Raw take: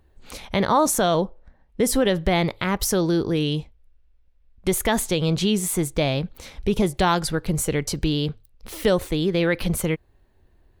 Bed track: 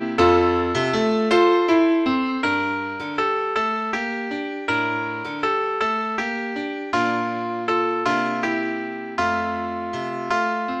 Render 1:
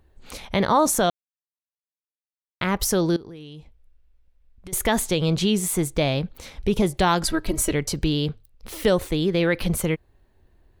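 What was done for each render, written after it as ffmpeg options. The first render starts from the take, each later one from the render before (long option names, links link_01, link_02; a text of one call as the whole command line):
ffmpeg -i in.wav -filter_complex "[0:a]asettb=1/sr,asplit=3[link_01][link_02][link_03];[link_01]atrim=end=3.164[link_04];[link_02]atrim=start=3.16:end=4.73,asetpts=PTS-STARTPTS,afade=type=in:duration=0.004:curve=qsin,afade=type=out:start_time=1.566:duration=0.004:curve=qsin,acompressor=threshold=-37dB:ratio=8:attack=3.2:release=140:knee=1:detection=peak[link_05];[link_03]atrim=start=4.726[link_06];[link_04][link_05]acrossfade=duration=0.004:curve1=hsin:curve2=qsin[link_07];[link_07][link_06]acrossfade=duration=0.004:curve1=qsin:curve2=hsin,asettb=1/sr,asplit=3[link_08][link_09][link_10];[link_08]atrim=end=7.234[link_11];[link_09]atrim=start=7.23:end=7.73,asetpts=PTS-STARTPTS,afade=type=in:duration=0.004:curve=qsin,afade=type=out:start_time=0.496:duration=0.004:curve=qsin,aecho=1:1:3.1:0.89,atrim=end_sample=22050[link_12];[link_10]atrim=start=7.726[link_13];[link_11][link_12]acrossfade=duration=0.004:curve1=hsin:curve2=qsin[link_14];[link_14][link_13]acrossfade=duration=0.004:curve1=qsin:curve2=hsin,asplit=3[link_15][link_16][link_17];[link_15]atrim=end=1.1,asetpts=PTS-STARTPTS,afade=type=out:start_time=1.096:duration=0.004:curve=hsin[link_18];[link_16]atrim=start=1.1:end=2.61,asetpts=PTS-STARTPTS,volume=0[link_19];[link_17]atrim=start=2.61,asetpts=PTS-STARTPTS,afade=type=in:duration=0.004:curve=hsin[link_20];[link_18][link_19][link_20]concat=n=3:v=0:a=1" out.wav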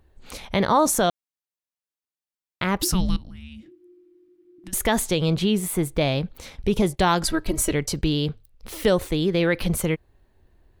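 ffmpeg -i in.wav -filter_complex "[0:a]asettb=1/sr,asplit=3[link_01][link_02][link_03];[link_01]atrim=end=2.824[link_04];[link_02]atrim=start=2.82:end=4.74,asetpts=PTS-STARTPTS,afade=type=in:duration=0.004:curve=qsin,afade=type=out:start_time=1.916:duration=0.004:curve=qsin,afreqshift=-370[link_05];[link_03]atrim=start=4.736[link_06];[link_04][link_05]acrossfade=duration=0.004:curve1=hsin:curve2=qsin[link_07];[link_07][link_06]acrossfade=duration=0.004:curve1=qsin:curve2=hsin,asettb=1/sr,asplit=3[link_08][link_09][link_10];[link_08]atrim=end=5.344[link_11];[link_09]atrim=start=5.34:end=6.01,asetpts=PTS-STARTPTS,afade=type=in:duration=0.004:curve=qsin,afade=type=out:start_time=0.666:duration=0.004:curve=qsin,equalizer=frequency=6400:width=1.1:gain=-8.5[link_12];[link_10]atrim=start=6.006[link_13];[link_11][link_12]acrossfade=duration=0.004:curve1=hsin:curve2=qsin[link_14];[link_14][link_13]acrossfade=duration=0.004:curve1=qsin:curve2=hsin,asplit=3[link_15][link_16][link_17];[link_15]afade=type=out:start_time=6.55:duration=0.02[link_18];[link_16]agate=range=-11dB:threshold=-37dB:ratio=16:release=100:detection=peak,afade=type=in:start_time=6.55:duration=0.02,afade=type=out:start_time=8.19:duration=0.02[link_19];[link_17]afade=type=in:start_time=8.19:duration=0.02[link_20];[link_18][link_19][link_20]amix=inputs=3:normalize=0" out.wav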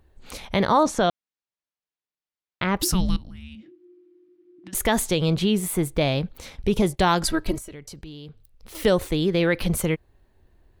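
ffmpeg -i in.wav -filter_complex "[0:a]asettb=1/sr,asplit=3[link_01][link_02][link_03];[link_01]atrim=end=0.834[link_04];[link_02]atrim=start=0.83:end=2.77,asetpts=PTS-STARTPTS,afade=type=in:duration=0.004:curve=qsin,afade=type=out:start_time=1.936:duration=0.004:curve=qsin,lowpass=4700[link_05];[link_03]atrim=start=2.766[link_06];[link_04][link_05]acrossfade=duration=0.004:curve1=hsin:curve2=qsin[link_07];[link_07][link_06]acrossfade=duration=0.004:curve1=qsin:curve2=hsin,asettb=1/sr,asplit=3[link_08][link_09][link_10];[link_08]atrim=end=3.554[link_11];[link_09]atrim=start=3.55:end=4.75,asetpts=PTS-STARTPTS,afade=type=in:duration=0.004:curve=qsin,afade=type=out:start_time=1.196:duration=0.004:curve=qsin,highpass=150,lowpass=4400[link_12];[link_10]atrim=start=4.746[link_13];[link_11][link_12]acrossfade=duration=0.004:curve1=hsin:curve2=qsin[link_14];[link_14][link_13]acrossfade=duration=0.004:curve1=qsin:curve2=hsin,asettb=1/sr,asplit=3[link_15][link_16][link_17];[link_15]atrim=end=7.584[link_18];[link_16]atrim=start=7.58:end=8.75,asetpts=PTS-STARTPTS,afade=type=in:duration=0.004:curve=qsin,afade=type=out:start_time=1.166:duration=0.004:curve=qsin,acompressor=threshold=-42dB:ratio=3:attack=3.2:release=140:knee=1:detection=peak[link_19];[link_17]atrim=start=8.746[link_20];[link_18][link_19]acrossfade=duration=0.004:curve1=hsin:curve2=qsin[link_21];[link_21][link_20]acrossfade=duration=0.004:curve1=qsin:curve2=hsin" out.wav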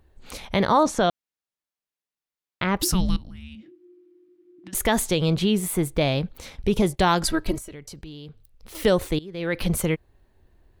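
ffmpeg -i in.wav -filter_complex "[0:a]asplit=2[link_01][link_02];[link_01]atrim=end=9.19,asetpts=PTS-STARTPTS,afade=type=out:start_time=9.186:duration=0.004:curve=hsin:silence=0.105925[link_03];[link_02]atrim=start=9.19,asetpts=PTS-STARTPTS,afade=type=in:duration=0.42:curve=qua:silence=0.105925[link_04];[link_03][link_04]concat=n=2:v=0:a=1" out.wav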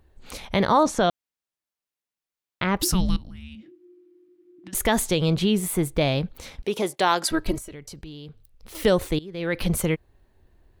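ffmpeg -i in.wav -filter_complex "[0:a]asettb=1/sr,asplit=3[link_01][link_02][link_03];[link_01]atrim=end=6.624[link_04];[link_02]atrim=start=6.62:end=7.31,asetpts=PTS-STARTPTS,afade=type=in:duration=0.004:curve=qsin,afade=type=out:start_time=0.686:duration=0.004:curve=qsin,highpass=360[link_05];[link_03]atrim=start=7.306[link_06];[link_04][link_05]acrossfade=duration=0.004:curve1=hsin:curve2=qsin[link_07];[link_07][link_06]acrossfade=duration=0.004:curve1=qsin:curve2=hsin" out.wav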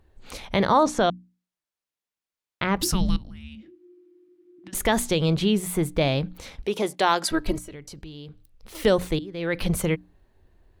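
ffmpeg -i in.wav -af "highshelf=frequency=10000:gain=-5.5,bandreject=frequency=60:width_type=h:width=6,bandreject=frequency=120:width_type=h:width=6,bandreject=frequency=180:width_type=h:width=6,bandreject=frequency=240:width_type=h:width=6,bandreject=frequency=300:width_type=h:width=6" out.wav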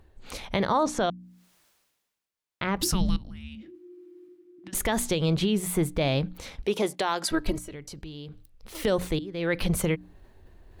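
ffmpeg -i in.wav -af "alimiter=limit=-15dB:level=0:latency=1:release=143,areverse,acompressor=mode=upward:threshold=-42dB:ratio=2.5,areverse" out.wav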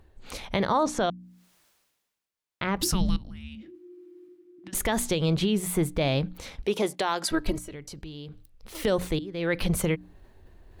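ffmpeg -i in.wav -af anull out.wav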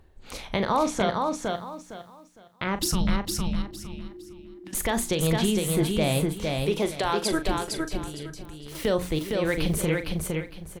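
ffmpeg -i in.wav -filter_complex "[0:a]asplit=2[link_01][link_02];[link_02]adelay=39,volume=-11dB[link_03];[link_01][link_03]amix=inputs=2:normalize=0,asplit=2[link_04][link_05];[link_05]aecho=0:1:459|918|1377|1836:0.668|0.174|0.0452|0.0117[link_06];[link_04][link_06]amix=inputs=2:normalize=0" out.wav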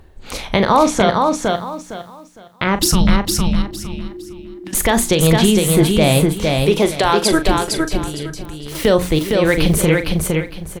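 ffmpeg -i in.wav -af "volume=11dB,alimiter=limit=-1dB:level=0:latency=1" out.wav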